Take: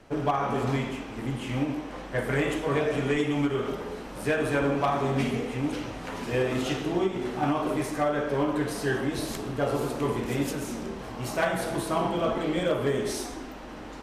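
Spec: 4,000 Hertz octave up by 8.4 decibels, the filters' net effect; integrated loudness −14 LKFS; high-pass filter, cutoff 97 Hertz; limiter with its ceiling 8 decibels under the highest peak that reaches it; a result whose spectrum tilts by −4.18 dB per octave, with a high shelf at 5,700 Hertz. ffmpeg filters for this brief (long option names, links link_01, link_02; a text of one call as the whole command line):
ffmpeg -i in.wav -af "highpass=97,equalizer=frequency=4000:width_type=o:gain=9,highshelf=frequency=5700:gain=6,volume=15dB,alimiter=limit=-3.5dB:level=0:latency=1" out.wav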